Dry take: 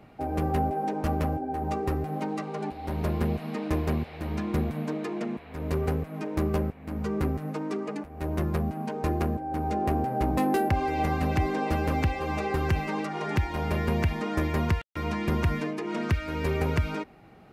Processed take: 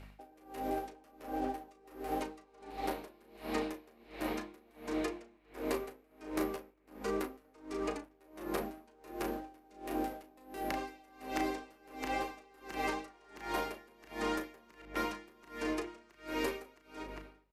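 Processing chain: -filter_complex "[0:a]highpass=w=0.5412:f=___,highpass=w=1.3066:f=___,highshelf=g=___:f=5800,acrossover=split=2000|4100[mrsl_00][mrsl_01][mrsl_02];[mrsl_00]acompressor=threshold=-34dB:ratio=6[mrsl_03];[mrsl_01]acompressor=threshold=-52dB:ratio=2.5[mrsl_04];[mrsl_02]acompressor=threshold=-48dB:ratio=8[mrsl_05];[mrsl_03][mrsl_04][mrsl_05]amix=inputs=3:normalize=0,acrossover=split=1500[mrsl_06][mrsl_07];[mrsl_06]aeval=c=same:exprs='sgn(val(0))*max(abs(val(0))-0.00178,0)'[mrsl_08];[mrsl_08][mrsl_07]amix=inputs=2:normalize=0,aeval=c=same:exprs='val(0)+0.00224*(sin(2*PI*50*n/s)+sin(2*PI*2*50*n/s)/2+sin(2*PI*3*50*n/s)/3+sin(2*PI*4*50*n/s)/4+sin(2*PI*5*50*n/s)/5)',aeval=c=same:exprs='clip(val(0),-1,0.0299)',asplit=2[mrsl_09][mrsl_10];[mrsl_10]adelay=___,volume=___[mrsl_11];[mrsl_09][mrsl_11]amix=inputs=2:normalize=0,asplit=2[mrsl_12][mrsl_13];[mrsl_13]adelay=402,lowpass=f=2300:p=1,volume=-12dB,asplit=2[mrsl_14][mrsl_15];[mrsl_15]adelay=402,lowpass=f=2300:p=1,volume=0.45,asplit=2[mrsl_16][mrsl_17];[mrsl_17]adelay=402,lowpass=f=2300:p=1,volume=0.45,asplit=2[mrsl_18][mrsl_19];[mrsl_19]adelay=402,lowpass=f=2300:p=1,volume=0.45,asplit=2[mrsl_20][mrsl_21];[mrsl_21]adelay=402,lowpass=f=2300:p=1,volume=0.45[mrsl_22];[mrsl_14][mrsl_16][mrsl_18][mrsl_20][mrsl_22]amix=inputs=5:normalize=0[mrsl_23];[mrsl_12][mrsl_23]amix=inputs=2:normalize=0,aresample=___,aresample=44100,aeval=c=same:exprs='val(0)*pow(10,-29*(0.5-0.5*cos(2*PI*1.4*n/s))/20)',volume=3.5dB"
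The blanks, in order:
290, 290, 4.5, 35, -7dB, 32000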